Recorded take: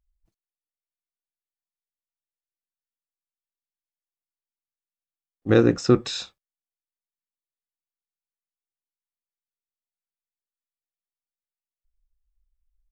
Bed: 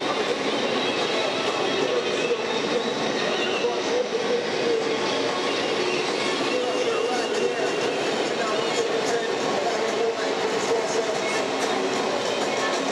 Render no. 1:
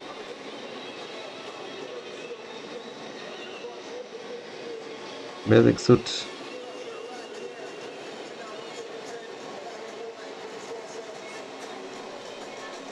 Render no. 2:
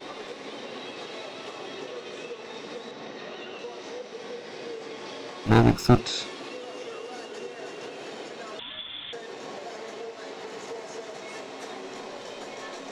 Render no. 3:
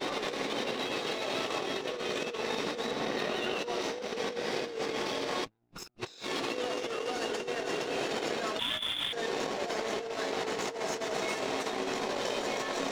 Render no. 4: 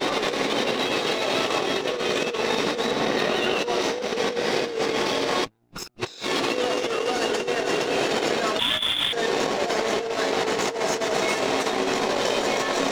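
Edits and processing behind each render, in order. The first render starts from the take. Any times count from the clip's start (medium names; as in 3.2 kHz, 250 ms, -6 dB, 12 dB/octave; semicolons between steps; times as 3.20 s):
add bed -14.5 dB
2.91–3.59 s: distance through air 77 m; 5.46–5.99 s: comb filter that takes the minimum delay 0.77 ms; 8.59–9.13 s: frequency inversion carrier 3.9 kHz
waveshaping leveller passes 1; compressor with a negative ratio -37 dBFS, ratio -0.5
trim +9.5 dB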